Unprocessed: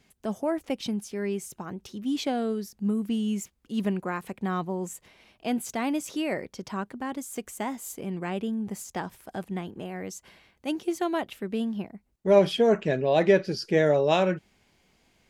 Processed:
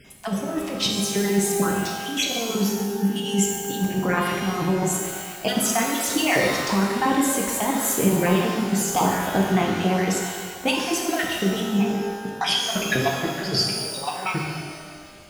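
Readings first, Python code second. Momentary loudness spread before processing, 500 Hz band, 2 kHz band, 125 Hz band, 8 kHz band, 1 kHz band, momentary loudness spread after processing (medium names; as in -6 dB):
15 LU, +0.5 dB, +10.0 dB, +8.0 dB, +16.0 dB, +8.0 dB, 7 LU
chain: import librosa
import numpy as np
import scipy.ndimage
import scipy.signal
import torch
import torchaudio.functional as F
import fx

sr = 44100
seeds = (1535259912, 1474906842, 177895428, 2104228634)

y = fx.spec_dropout(x, sr, seeds[0], share_pct=22)
y = fx.over_compress(y, sr, threshold_db=-33.0, ratio=-0.5)
y = fx.rev_shimmer(y, sr, seeds[1], rt60_s=1.6, semitones=12, shimmer_db=-8, drr_db=-1.0)
y = y * 10.0 ** (7.5 / 20.0)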